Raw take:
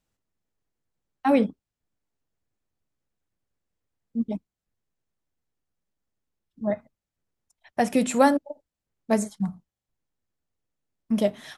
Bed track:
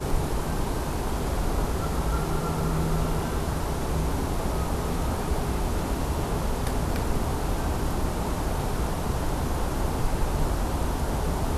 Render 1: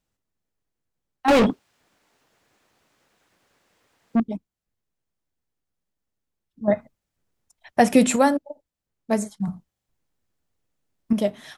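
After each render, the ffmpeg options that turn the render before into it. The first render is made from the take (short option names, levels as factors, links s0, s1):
-filter_complex "[0:a]asettb=1/sr,asplit=3[s0][s1][s2];[s0]atrim=end=1.284[s3];[s1]atrim=start=1.28:end=4.2,asetpts=PTS-STARTPTS,afade=t=in:d=0.004:c=qsin,afade=t=out:st=2.916:d=0.004:c=qsin,asplit=2[s4][s5];[s5]highpass=f=720:p=1,volume=50.1,asoftclip=type=tanh:threshold=0.335[s6];[s4][s6]amix=inputs=2:normalize=0,lowpass=f=3300:p=1,volume=0.501[s7];[s2]atrim=start=4.196[s8];[s3][s7]acrossfade=d=0.004:c1=hsin:c2=qsin[s9];[s9][s8]acrossfade=d=0.004:c1=qsin:c2=hsin,asettb=1/sr,asplit=3[s10][s11][s12];[s10]atrim=end=9.474[s13];[s11]atrim=start=9.47:end=11.13,asetpts=PTS-STARTPTS,afade=t=in:d=0.004:c=qsin,afade=t=out:st=1.656:d=0.004:c=qsin,acontrast=61[s14];[s12]atrim=start=11.126[s15];[s13][s14]acrossfade=d=0.004:c1=hsin:c2=qsin[s16];[s16][s15]acrossfade=d=0.004:c1=qsin:c2=hsin,asplit=3[s17][s18][s19];[s17]atrim=end=6.682[s20];[s18]atrim=start=6.678:end=8.162,asetpts=PTS-STARTPTS,volume=2.11[s21];[s19]atrim=start=8.158[s22];[s20][s21]acrossfade=d=0.004:c1=hsin:c2=hsin[s23];[s23][s22]acrossfade=d=0.004:c1=hsin:c2=hsin"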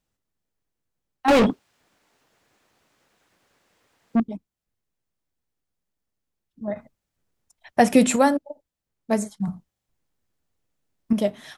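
-filter_complex "[0:a]asettb=1/sr,asplit=3[s0][s1][s2];[s0]atrim=end=4.244[s3];[s1]atrim=start=4.24:end=6.76,asetpts=PTS-STARTPTS,afade=t=in:d=0.004:c=qsin,afade=t=out:st=2.516:d=0.004:c=qsin,acompressor=threshold=0.0282:ratio=2:attack=3.2:release=140:knee=1:detection=peak[s4];[s2]atrim=start=6.756[s5];[s3][s4]acrossfade=d=0.004:c1=hsin:c2=qsin[s6];[s6][s5]acrossfade=d=0.004:c1=qsin:c2=hsin"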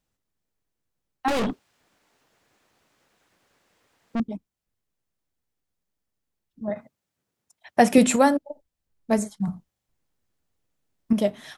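-filter_complex "[0:a]asettb=1/sr,asplit=3[s0][s1][s2];[s0]atrim=end=1.284[s3];[s1]atrim=start=1.28:end=4.2,asetpts=PTS-STARTPTS,afade=t=in:d=0.004:c=qsin,afade=t=out:st=2.916:d=0.004:c=qsin,aeval=exprs='(tanh(14.1*val(0)+0.3)-tanh(0.3))/14.1':c=same[s4];[s2]atrim=start=4.196[s5];[s3][s4]acrossfade=d=0.004:c1=hsin:c2=qsin[s6];[s6][s5]acrossfade=d=0.004:c1=qsin:c2=hsin,asettb=1/sr,asplit=3[s7][s8][s9];[s7]atrim=end=6.694[s10];[s8]atrim=start=6.69:end=7.98,asetpts=PTS-STARTPTS,afade=t=in:d=0.004:c=qsin,afade=t=out:st=1.286:d=0.004:c=qsin,highpass=120[s11];[s9]atrim=start=7.976[s12];[s10][s11]acrossfade=d=0.004:c1=hsin:c2=qsin[s13];[s13][s12]acrossfade=d=0.004:c1=qsin:c2=hsin,asettb=1/sr,asplit=3[s14][s15][s16];[s14]atrim=end=8.504[s17];[s15]atrim=start=8.5:end=9.19,asetpts=PTS-STARTPTS,afade=t=in:d=0.004:c=qsin,afade=t=out:st=0.686:d=0.004:c=qsin,lowshelf=f=61:g=11.5[s18];[s16]atrim=start=9.186[s19];[s17][s18]acrossfade=d=0.004:c1=hsin:c2=qsin[s20];[s20][s19]acrossfade=d=0.004:c1=qsin:c2=hsin"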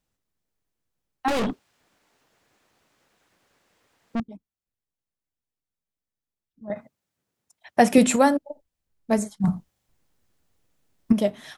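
-filter_complex "[0:a]asettb=1/sr,asplit=3[s0][s1][s2];[s0]atrim=end=9.444[s3];[s1]atrim=start=9.44:end=11.12,asetpts=PTS-STARTPTS,afade=t=in:d=0.004:c=qsin,afade=t=out:st=1.676:d=0.004:c=qsin,acontrast=84[s4];[s2]atrim=start=11.116[s5];[s3][s4]acrossfade=d=0.004:c1=hsin:c2=qsin[s6];[s6][s5]acrossfade=d=0.004:c1=qsin:c2=hsin,asplit=3[s7][s8][s9];[s7]atrim=end=4.202[s10];[s8]atrim=start=4.198:end=6.702,asetpts=PTS-STARTPTS,volume=0.355[s11];[s9]atrim=start=6.698[s12];[s10][s11]acrossfade=d=0.004:c1=hsin:c2=hsin[s13];[s13][s12]acrossfade=d=0.004:c1=hsin:c2=hsin"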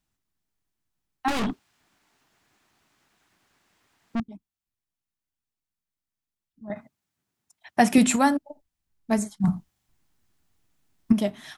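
-af "equalizer=f=510:w=3.2:g=-11"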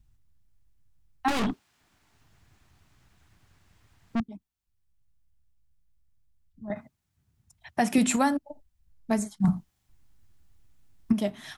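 -filter_complex "[0:a]acrossover=split=110[s0][s1];[s0]acompressor=mode=upward:threshold=0.00708:ratio=2.5[s2];[s2][s1]amix=inputs=2:normalize=0,alimiter=limit=0.237:level=0:latency=1:release=322"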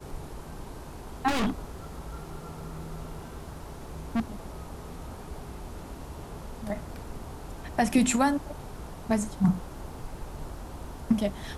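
-filter_complex "[1:a]volume=0.211[s0];[0:a][s0]amix=inputs=2:normalize=0"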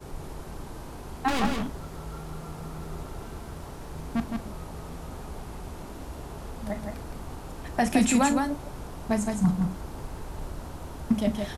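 -filter_complex "[0:a]asplit=2[s0][s1];[s1]adelay=38,volume=0.224[s2];[s0][s2]amix=inputs=2:normalize=0,aecho=1:1:165:0.596"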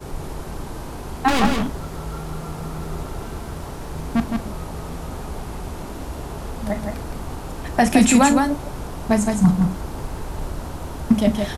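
-af "volume=2.51,alimiter=limit=0.708:level=0:latency=1"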